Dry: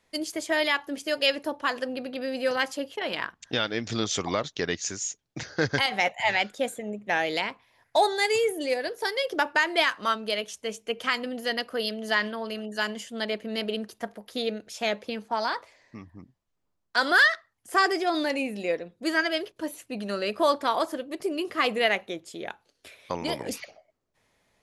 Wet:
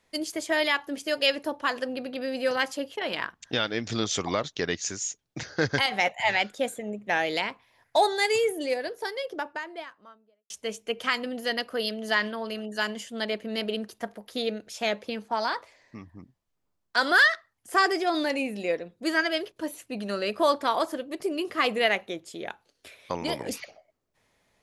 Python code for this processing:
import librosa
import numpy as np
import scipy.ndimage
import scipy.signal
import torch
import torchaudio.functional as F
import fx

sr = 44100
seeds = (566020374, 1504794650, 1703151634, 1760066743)

y = fx.studio_fade_out(x, sr, start_s=8.33, length_s=2.17)